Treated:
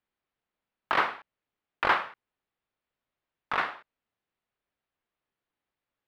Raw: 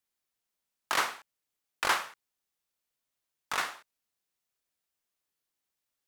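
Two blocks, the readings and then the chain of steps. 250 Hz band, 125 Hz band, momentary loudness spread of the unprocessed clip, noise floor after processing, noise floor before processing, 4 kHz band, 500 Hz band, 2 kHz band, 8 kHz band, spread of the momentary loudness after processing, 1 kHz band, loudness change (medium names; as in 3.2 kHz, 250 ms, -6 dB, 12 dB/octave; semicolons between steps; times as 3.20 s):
+6.0 dB, +6.5 dB, 17 LU, under -85 dBFS, under -85 dBFS, -3.0 dB, +5.5 dB, +3.0 dB, under -20 dB, 17 LU, +4.5 dB, +2.5 dB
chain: distance through air 400 m; trim +6.5 dB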